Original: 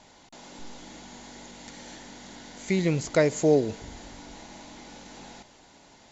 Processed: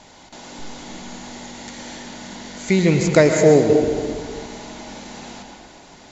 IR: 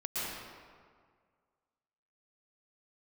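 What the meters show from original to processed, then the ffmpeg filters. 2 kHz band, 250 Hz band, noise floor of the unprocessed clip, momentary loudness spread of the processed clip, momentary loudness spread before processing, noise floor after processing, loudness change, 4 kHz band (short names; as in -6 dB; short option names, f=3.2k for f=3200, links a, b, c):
+9.5 dB, +9.5 dB, -55 dBFS, 22 LU, 22 LU, -46 dBFS, +8.0 dB, +9.0 dB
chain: -filter_complex "[0:a]asplit=2[a][b];[1:a]atrim=start_sample=2205[c];[b][c]afir=irnorm=-1:irlink=0,volume=-6dB[d];[a][d]amix=inputs=2:normalize=0,volume=5.5dB"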